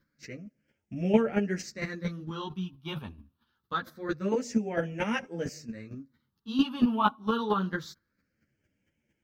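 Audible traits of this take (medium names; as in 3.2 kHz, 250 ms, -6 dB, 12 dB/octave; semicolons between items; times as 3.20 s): phasing stages 6, 0.25 Hz, lowest notch 520–1100 Hz; chopped level 4.4 Hz, depth 60%, duty 10%; a shimmering, thickened sound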